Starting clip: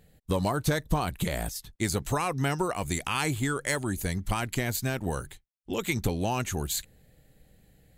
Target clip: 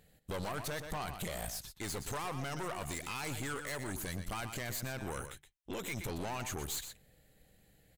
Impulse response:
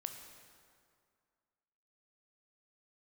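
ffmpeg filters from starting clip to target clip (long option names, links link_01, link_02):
-filter_complex "[0:a]aeval=exprs='(tanh(35.5*val(0)+0.65)-tanh(0.65))/35.5':channel_layout=same,lowshelf=frequency=460:gain=-6,asplit=2[link_01][link_02];[link_02]adelay=122.4,volume=-11dB,highshelf=frequency=4000:gain=-2.76[link_03];[link_01][link_03]amix=inputs=2:normalize=0,alimiter=level_in=7.5dB:limit=-24dB:level=0:latency=1:release=15,volume=-7.5dB,asettb=1/sr,asplit=3[link_04][link_05][link_06];[link_04]atrim=end=4.994[link_07];[link_05]atrim=start=4.99:end=6.1,asetpts=PTS-STARTPTS,afade=type=in:duration=0.004:curve=qsin,afade=type=out:start_time=1.106:duration=0.004:curve=qsin,bandreject=frequency=4500:width=6.4[link_08];[link_06]atrim=start=6.096[link_09];[link_07][link_08]acrossfade=duration=0.004:curve1=hsin:curve2=qsin[link_10];[link_10][link_09]acrossfade=duration=0.004:curve1=qsin:curve2=hsin,volume=1.5dB"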